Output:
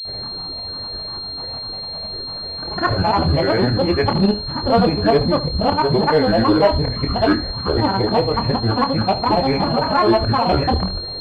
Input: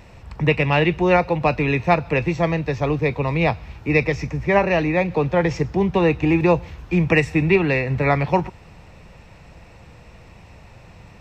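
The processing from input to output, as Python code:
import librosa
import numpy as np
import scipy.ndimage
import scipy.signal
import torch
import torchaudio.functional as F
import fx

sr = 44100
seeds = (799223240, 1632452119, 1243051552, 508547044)

p1 = np.flip(x).copy()
p2 = fx.peak_eq(p1, sr, hz=630.0, db=8.5, octaves=0.96)
p3 = fx.hum_notches(p2, sr, base_hz=50, count=6)
p4 = fx.over_compress(p3, sr, threshold_db=-23.0, ratio=-1.0)
p5 = p3 + (p4 * 10.0 ** (-2.5 / 20.0))
p6 = fx.tremolo_shape(p5, sr, shape='saw_up', hz=3.3, depth_pct=60)
p7 = fx.granulator(p6, sr, seeds[0], grain_ms=100.0, per_s=20.0, spray_ms=100.0, spread_st=12)
p8 = 10.0 ** (-9.5 / 20.0) * np.tanh(p7 / 10.0 ** (-9.5 / 20.0))
p9 = fx.doubler(p8, sr, ms=26.0, db=-8.0)
p10 = p9 + 10.0 ** (-14.5 / 20.0) * np.pad(p9, (int(74 * sr / 1000.0), 0))[:len(p9)]
p11 = fx.pwm(p10, sr, carrier_hz=4200.0)
y = p11 * 10.0 ** (2.0 / 20.0)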